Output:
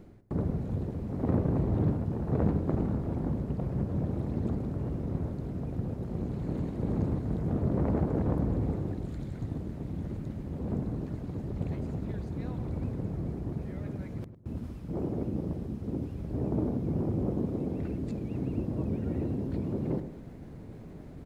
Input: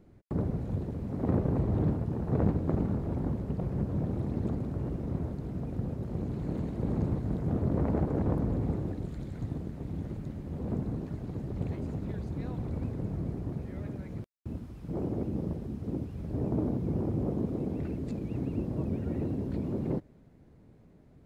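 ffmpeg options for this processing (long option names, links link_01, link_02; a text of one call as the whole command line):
ffmpeg -i in.wav -filter_complex "[0:a]areverse,acompressor=mode=upward:threshold=-33dB:ratio=2.5,areverse,asplit=2[link_01][link_02];[link_02]adelay=104,lowpass=frequency=1100:poles=1,volume=-10dB,asplit=2[link_03][link_04];[link_04]adelay=104,lowpass=frequency=1100:poles=1,volume=0.33,asplit=2[link_05][link_06];[link_06]adelay=104,lowpass=frequency=1100:poles=1,volume=0.33,asplit=2[link_07][link_08];[link_08]adelay=104,lowpass=frequency=1100:poles=1,volume=0.33[link_09];[link_01][link_03][link_05][link_07][link_09]amix=inputs=5:normalize=0" out.wav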